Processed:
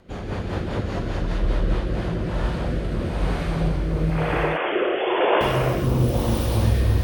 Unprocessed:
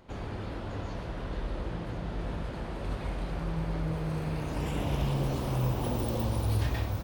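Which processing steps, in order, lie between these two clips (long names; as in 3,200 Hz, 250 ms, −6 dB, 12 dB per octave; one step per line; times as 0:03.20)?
0:04.10–0:05.41: three sine waves on the formant tracks
in parallel at +0.5 dB: brickwall limiter −26 dBFS, peak gain reduction 8 dB
on the sum: reverb whose tail is shaped and stops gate 490 ms flat, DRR −5.5 dB
rotating-speaker cabinet horn 5 Hz, later 1 Hz, at 0:01.58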